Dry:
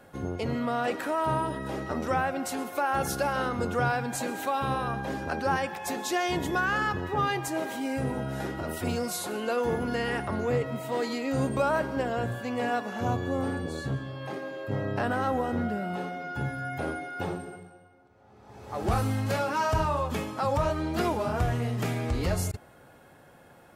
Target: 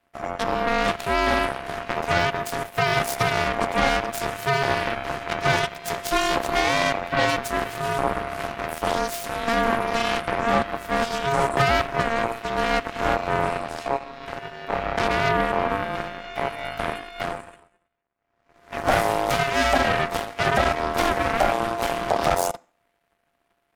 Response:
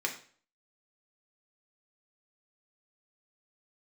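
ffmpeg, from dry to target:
-filter_complex "[0:a]aeval=exprs='0.2*(cos(1*acos(clip(val(0)/0.2,-1,1)))-cos(1*PI/2))+0.0282*(cos(7*acos(clip(val(0)/0.2,-1,1)))-cos(7*PI/2))+0.0355*(cos(8*acos(clip(val(0)/0.2,-1,1)))-cos(8*PI/2))':c=same,aeval=exprs='val(0)*sin(2*PI*690*n/s)':c=same,asplit=2[s0][s1];[1:a]atrim=start_sample=2205[s2];[s1][s2]afir=irnorm=-1:irlink=0,volume=0.0944[s3];[s0][s3]amix=inputs=2:normalize=0,volume=2.11"

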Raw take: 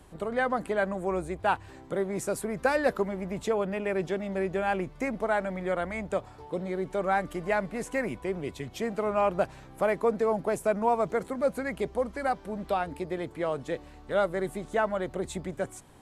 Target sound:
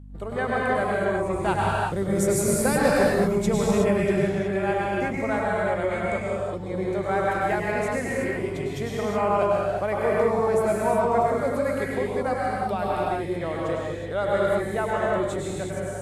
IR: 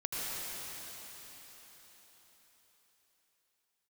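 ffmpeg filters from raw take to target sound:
-filter_complex "[0:a]agate=range=0.1:threshold=0.00631:ratio=16:detection=peak,asettb=1/sr,asplit=3[s0][s1][s2];[s0]atrim=end=1.334[s3];[s1]atrim=start=1.33:end=4.06,asetpts=PTS-STARTPTS,afade=t=in:d=0.004:c=qsin,afade=t=out:st=2.726:d=0.004:c=qsin,bass=f=250:g=11,treble=f=4000:g=9[s4];[s2]atrim=start=4.056[s5];[s3][s4]acrossfade=d=0.004:c1=hsin:c2=qsin[s6];[s6][s5]acrossfade=d=0.004:c1=qsin:c2=hsin,aeval=exprs='val(0)+0.01*(sin(2*PI*50*n/s)+sin(2*PI*2*50*n/s)/2+sin(2*PI*3*50*n/s)/3+sin(2*PI*4*50*n/s)/4+sin(2*PI*5*50*n/s)/5)':c=same[s7];[1:a]atrim=start_sample=2205,afade=t=out:st=0.35:d=0.01,atrim=end_sample=15876,asetrate=34839,aresample=44100[s8];[s7][s8]afir=irnorm=-1:irlink=0"

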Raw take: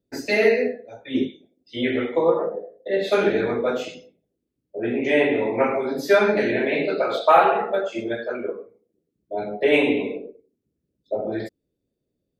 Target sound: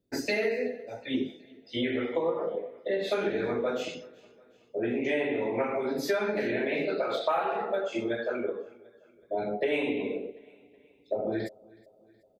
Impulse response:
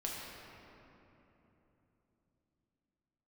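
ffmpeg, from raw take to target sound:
-filter_complex "[0:a]acompressor=threshold=0.0447:ratio=4,asplit=2[s0][s1];[s1]aecho=0:1:371|742|1113:0.0631|0.0341|0.0184[s2];[s0][s2]amix=inputs=2:normalize=0"

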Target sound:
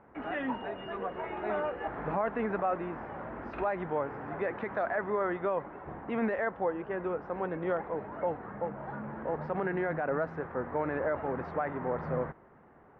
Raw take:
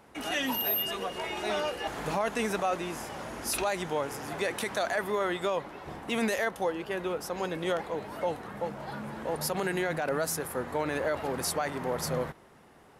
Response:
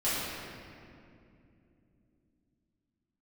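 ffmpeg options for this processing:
-af "lowpass=f=1800:w=0.5412,lowpass=f=1800:w=1.3066,volume=0.891"

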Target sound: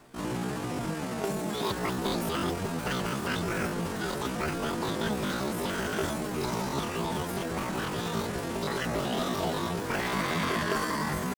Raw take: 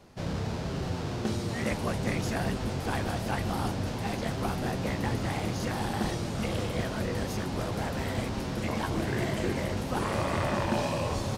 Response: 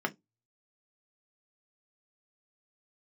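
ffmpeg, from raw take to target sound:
-af "asetrate=80880,aresample=44100,atempo=0.545254"

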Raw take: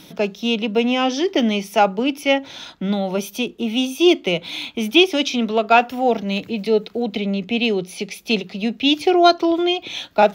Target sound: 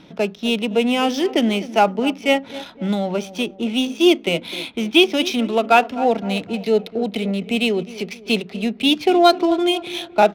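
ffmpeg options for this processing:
-filter_complex "[0:a]asplit=2[s0][s1];[s1]adelay=256,lowpass=f=1600:p=1,volume=0.168,asplit=2[s2][s3];[s3]adelay=256,lowpass=f=1600:p=1,volume=0.5,asplit=2[s4][s5];[s5]adelay=256,lowpass=f=1600:p=1,volume=0.5,asplit=2[s6][s7];[s7]adelay=256,lowpass=f=1600:p=1,volume=0.5,asplit=2[s8][s9];[s9]adelay=256,lowpass=f=1600:p=1,volume=0.5[s10];[s0][s2][s4][s6][s8][s10]amix=inputs=6:normalize=0,adynamicsmooth=sensitivity=6.5:basefreq=2400"

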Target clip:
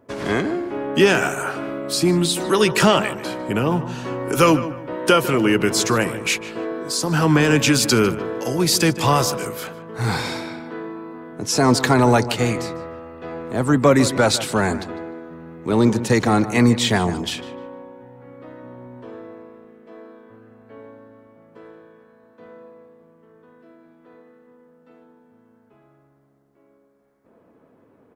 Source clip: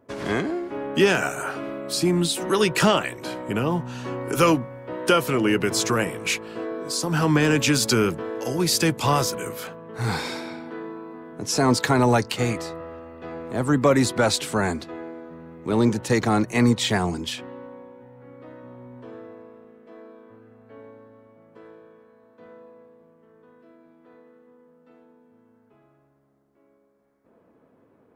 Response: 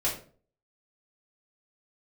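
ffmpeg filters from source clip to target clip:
-filter_complex "[0:a]asplit=2[s0][s1];[s1]adelay=151,lowpass=f=2500:p=1,volume=0.224,asplit=2[s2][s3];[s3]adelay=151,lowpass=f=2500:p=1,volume=0.33,asplit=2[s4][s5];[s5]adelay=151,lowpass=f=2500:p=1,volume=0.33[s6];[s0][s2][s4][s6]amix=inputs=4:normalize=0,volume=1.5"

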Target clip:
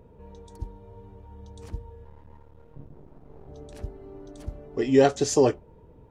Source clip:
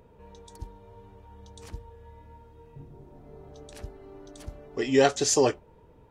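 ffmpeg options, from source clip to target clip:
-filter_complex "[0:a]asettb=1/sr,asplit=3[s0][s1][s2];[s0]atrim=end=2.044[s3];[s1]atrim=start=2.04:end=3.48,asetpts=PTS-STARTPTS,afade=t=in:d=0.004:c=qsin,afade=t=out:st=1.436:d=0.004:c=qsin,aeval=exprs='max(val(0),0)':c=same[s4];[s2]atrim=start=3.476[s5];[s3][s4]acrossfade=d=0.004:c1=hsin:c2=qsin[s6];[s6][s5]acrossfade=d=0.004:c1=qsin:c2=hsin,tiltshelf=f=810:g=5"

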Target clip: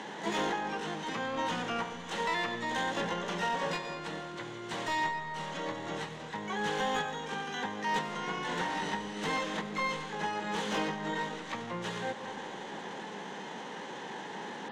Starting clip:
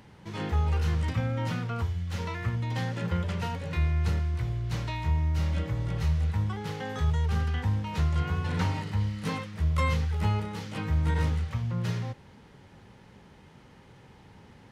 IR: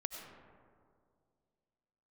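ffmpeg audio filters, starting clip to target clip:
-filter_complex "[0:a]acompressor=threshold=0.0141:ratio=20,highpass=f=200:w=0.5412,highpass=f=200:w=1.3066,equalizer=f=260:t=q:w=4:g=-4,equalizer=f=410:t=q:w=4:g=-3,equalizer=f=600:t=q:w=4:g=-5,equalizer=f=1300:t=q:w=4:g=-8,equalizer=f=2300:t=q:w=4:g=-7,equalizer=f=3300:t=q:w=4:g=4,lowpass=f=4100:w=0.5412,lowpass=f=4100:w=1.3066,asplit=2[s0][s1];[s1]highpass=f=720:p=1,volume=31.6,asoftclip=type=tanh:threshold=0.158[s2];[s0][s2]amix=inputs=2:normalize=0,lowpass=f=1100:p=1,volume=0.501,asplit=2[s3][s4];[1:a]atrim=start_sample=2205,highshelf=f=6100:g=11.5[s5];[s4][s5]afir=irnorm=-1:irlink=0,volume=1.26[s6];[s3][s6]amix=inputs=2:normalize=0,asplit=2[s7][s8];[s8]asetrate=88200,aresample=44100,atempo=0.5,volume=0.501[s9];[s7][s9]amix=inputs=2:normalize=0,volume=0.422"

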